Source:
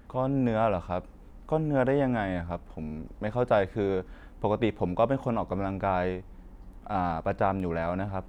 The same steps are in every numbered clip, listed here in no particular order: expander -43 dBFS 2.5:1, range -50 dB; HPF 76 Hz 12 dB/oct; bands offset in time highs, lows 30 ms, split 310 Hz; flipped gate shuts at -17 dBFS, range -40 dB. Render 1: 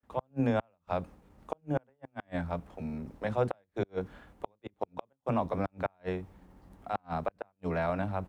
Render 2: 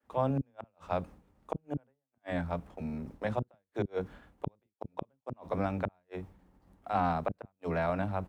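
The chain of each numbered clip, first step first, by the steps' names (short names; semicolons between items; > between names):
bands offset in time > flipped gate > expander > HPF; flipped gate > HPF > expander > bands offset in time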